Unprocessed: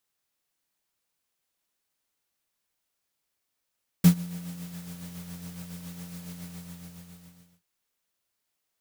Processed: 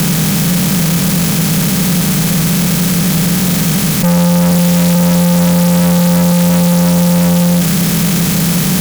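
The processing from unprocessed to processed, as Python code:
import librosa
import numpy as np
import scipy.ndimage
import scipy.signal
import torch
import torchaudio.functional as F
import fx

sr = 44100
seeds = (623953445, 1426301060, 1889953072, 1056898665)

y = fx.bin_compress(x, sr, power=0.2)
y = fx.low_shelf(y, sr, hz=200.0, db=-5.5, at=(4.51, 4.94))
y = fx.fuzz(y, sr, gain_db=36.0, gate_db=-41.0)
y = F.gain(torch.from_numpy(y), 4.5).numpy()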